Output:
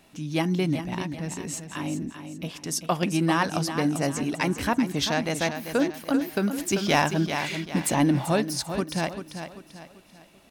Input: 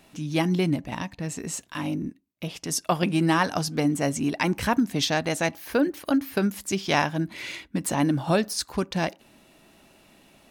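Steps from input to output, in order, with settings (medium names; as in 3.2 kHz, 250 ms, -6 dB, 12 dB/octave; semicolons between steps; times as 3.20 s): feedback delay 391 ms, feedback 39%, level -9 dB; 6.58–8.26 s: waveshaping leveller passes 1; trim -1.5 dB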